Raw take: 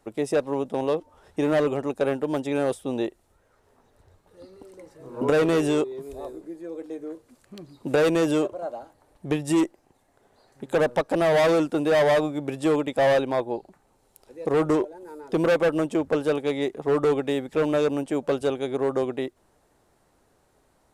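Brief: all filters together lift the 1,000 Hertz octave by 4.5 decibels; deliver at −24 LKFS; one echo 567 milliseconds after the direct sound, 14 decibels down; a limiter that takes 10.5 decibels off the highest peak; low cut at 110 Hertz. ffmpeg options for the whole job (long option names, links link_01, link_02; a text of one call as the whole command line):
ffmpeg -i in.wav -af "highpass=110,equalizer=frequency=1000:width_type=o:gain=6,alimiter=limit=-16dB:level=0:latency=1,aecho=1:1:567:0.2,volume=3dB" out.wav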